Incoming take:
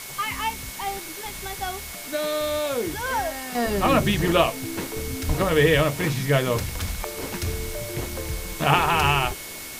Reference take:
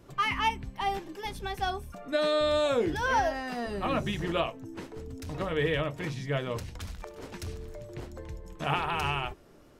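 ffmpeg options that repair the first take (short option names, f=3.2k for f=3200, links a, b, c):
-filter_complex "[0:a]bandreject=f=2.2k:w=30,asplit=3[a][b][c];[a]afade=t=out:st=5.27:d=0.02[d];[b]highpass=f=140:w=0.5412,highpass=f=140:w=1.3066,afade=t=in:st=5.27:d=0.02,afade=t=out:st=5.39:d=0.02[e];[c]afade=t=in:st=5.39:d=0.02[f];[d][e][f]amix=inputs=3:normalize=0,afwtdn=0.016,asetnsamples=n=441:p=0,asendcmd='3.55 volume volume -10dB',volume=0dB"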